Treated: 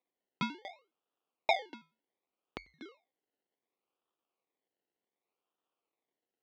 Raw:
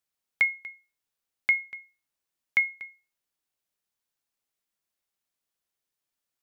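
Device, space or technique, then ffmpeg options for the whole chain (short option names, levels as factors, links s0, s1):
circuit-bent sampling toy: -af "acrusher=samples=29:mix=1:aa=0.000001:lfo=1:lforange=17.4:lforate=0.67,highpass=430,equalizer=f=600:t=q:w=4:g=-7,equalizer=f=890:t=q:w=4:g=-5,equalizer=f=1600:t=q:w=4:g=-8,lowpass=f=4100:w=0.5412,lowpass=f=4100:w=1.3066"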